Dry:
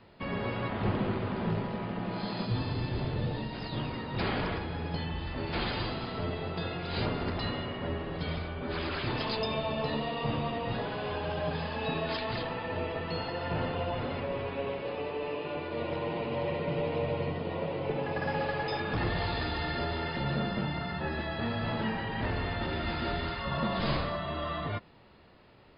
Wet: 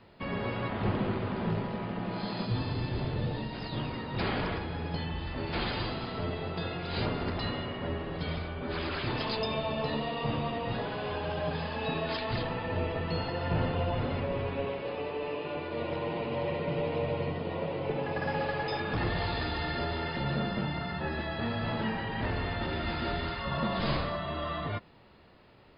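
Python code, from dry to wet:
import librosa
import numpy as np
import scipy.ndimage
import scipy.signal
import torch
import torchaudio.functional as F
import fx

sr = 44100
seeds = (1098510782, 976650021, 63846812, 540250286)

y = fx.low_shelf(x, sr, hz=190.0, db=7.0, at=(12.31, 14.66))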